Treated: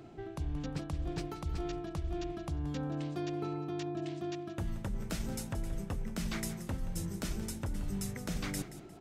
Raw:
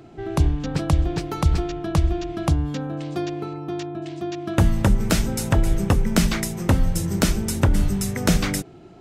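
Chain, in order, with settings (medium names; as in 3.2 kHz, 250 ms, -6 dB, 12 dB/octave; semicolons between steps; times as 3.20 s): reverse; compression 6:1, threshold -28 dBFS, peak gain reduction 15.5 dB; reverse; feedback delay 177 ms, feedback 31%, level -14 dB; trim -6 dB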